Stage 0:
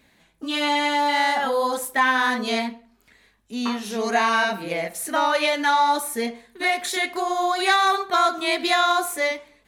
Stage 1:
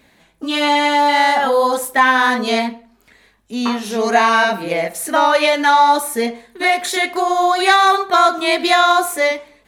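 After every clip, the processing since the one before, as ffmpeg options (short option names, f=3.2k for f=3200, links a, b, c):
-af "equalizer=f=600:w=0.6:g=3,volume=5dB"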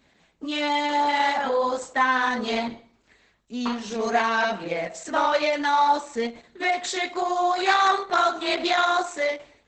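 -af "bandreject=f=323.3:t=h:w=4,bandreject=f=646.6:t=h:w=4,bandreject=f=969.9:t=h:w=4,bandreject=f=1.2932k:t=h:w=4,bandreject=f=1.6165k:t=h:w=4,bandreject=f=1.9398k:t=h:w=4,bandreject=f=2.2631k:t=h:w=4,bandreject=f=2.5864k:t=h:w=4,bandreject=f=2.9097k:t=h:w=4,bandreject=f=3.233k:t=h:w=4,bandreject=f=3.5563k:t=h:w=4,bandreject=f=3.8796k:t=h:w=4,bandreject=f=4.2029k:t=h:w=4,bandreject=f=4.5262k:t=h:w=4,bandreject=f=4.8495k:t=h:w=4,bandreject=f=5.1728k:t=h:w=4,bandreject=f=5.4961k:t=h:w=4,bandreject=f=5.8194k:t=h:w=4,bandreject=f=6.1427k:t=h:w=4,bandreject=f=6.466k:t=h:w=4,bandreject=f=6.7893k:t=h:w=4,bandreject=f=7.1126k:t=h:w=4,bandreject=f=7.4359k:t=h:w=4,bandreject=f=7.7592k:t=h:w=4,bandreject=f=8.0825k:t=h:w=4,bandreject=f=8.4058k:t=h:w=4,bandreject=f=8.7291k:t=h:w=4,bandreject=f=9.0524k:t=h:w=4,bandreject=f=9.3757k:t=h:w=4,bandreject=f=9.699k:t=h:w=4,bandreject=f=10.0223k:t=h:w=4,volume=-7.5dB" -ar 48000 -c:a libopus -b:a 10k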